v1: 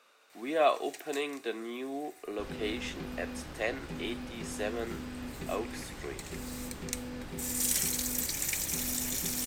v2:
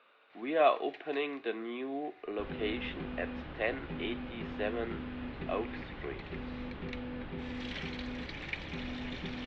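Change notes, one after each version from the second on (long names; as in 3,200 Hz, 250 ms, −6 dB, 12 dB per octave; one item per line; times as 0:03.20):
master: add Butterworth low-pass 3,500 Hz 36 dB per octave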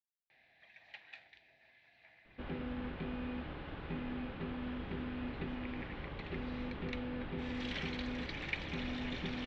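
speech: muted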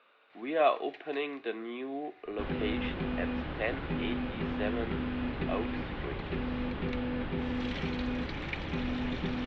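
speech: unmuted
second sound +7.0 dB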